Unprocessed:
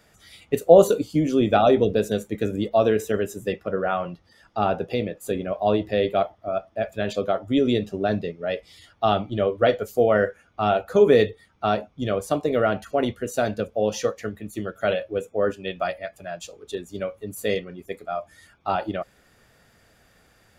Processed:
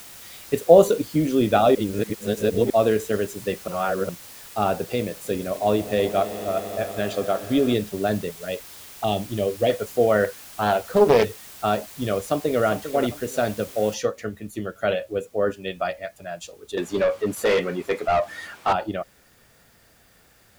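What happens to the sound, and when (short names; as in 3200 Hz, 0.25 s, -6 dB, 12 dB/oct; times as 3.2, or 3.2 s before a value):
1.75–2.7 reverse
3.68–4.09 reverse
5.08–7.74 swelling echo 80 ms, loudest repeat 5, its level -18 dB
8.29–9.7 envelope phaser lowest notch 170 Hz, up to 1400 Hz, full sweep at -22 dBFS
10.24–11.25 Doppler distortion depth 0.45 ms
12.18–12.66 echo throw 0.4 s, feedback 35%, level -10 dB
13.94 noise floor step -43 dB -61 dB
16.77–18.73 overdrive pedal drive 26 dB, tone 1700 Hz, clips at -11 dBFS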